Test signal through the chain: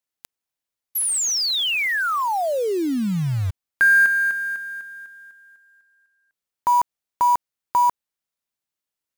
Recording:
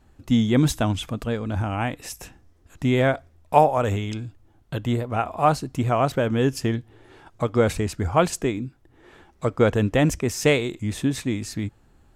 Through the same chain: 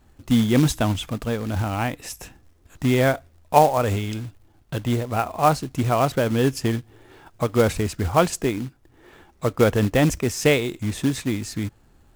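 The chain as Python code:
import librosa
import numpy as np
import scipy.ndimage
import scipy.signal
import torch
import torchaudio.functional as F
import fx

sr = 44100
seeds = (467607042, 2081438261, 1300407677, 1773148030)

y = fx.quant_float(x, sr, bits=2)
y = F.gain(torch.from_numpy(y), 1.0).numpy()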